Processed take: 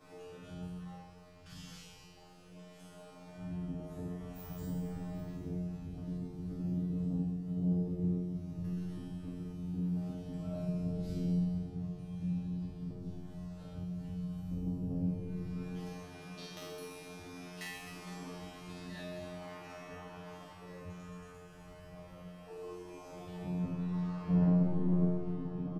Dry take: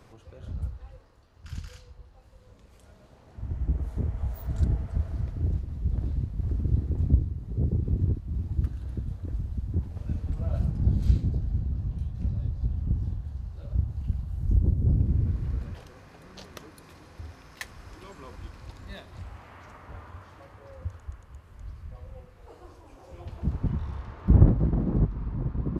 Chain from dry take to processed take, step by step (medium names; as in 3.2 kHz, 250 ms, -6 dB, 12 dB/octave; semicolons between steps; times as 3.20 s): resonant low shelf 130 Hz -6.5 dB, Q 1.5; comb 6.6 ms, depth 84%; dynamic bell 1.5 kHz, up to -4 dB, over -57 dBFS, Q 1.2; in parallel at +1.5 dB: compression, threshold -41 dBFS, peak gain reduction 26 dB; on the sum: saturation -19.5 dBFS, distortion -11 dB; feedback comb 89 Hz, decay 0.95 s, harmonics all, mix 100%; reverse bouncing-ball echo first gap 50 ms, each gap 1.6×, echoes 5; on a send at -11 dB: reverberation RT60 0.60 s, pre-delay 135 ms; on the sum: trim +6 dB